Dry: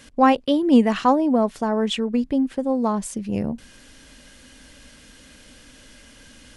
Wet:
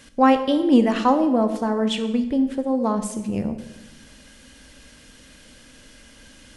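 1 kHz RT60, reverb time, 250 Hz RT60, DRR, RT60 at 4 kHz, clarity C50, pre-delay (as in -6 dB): 0.95 s, 1.0 s, 1.3 s, 8.0 dB, 0.80 s, 10.5 dB, 18 ms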